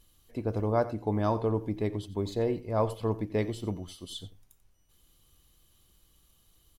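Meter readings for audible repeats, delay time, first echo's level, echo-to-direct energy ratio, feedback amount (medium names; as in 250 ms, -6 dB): 1, 89 ms, -16.0 dB, -16.0 dB, no regular repeats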